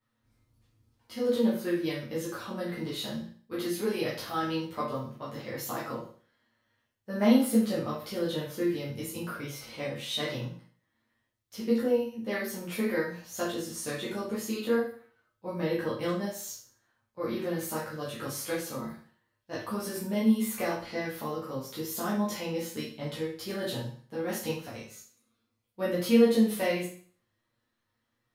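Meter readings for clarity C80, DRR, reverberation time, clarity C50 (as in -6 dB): 9.0 dB, -9.0 dB, 0.45 s, 4.0 dB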